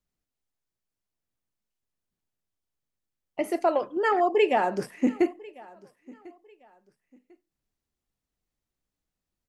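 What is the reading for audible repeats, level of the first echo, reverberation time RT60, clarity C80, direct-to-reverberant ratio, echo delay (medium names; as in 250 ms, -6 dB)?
2, -23.0 dB, no reverb, no reverb, no reverb, 1047 ms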